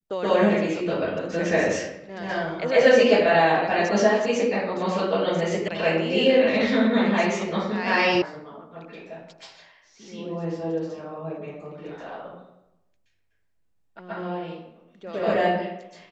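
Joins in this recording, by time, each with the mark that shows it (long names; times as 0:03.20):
0:05.68: cut off before it has died away
0:08.22: cut off before it has died away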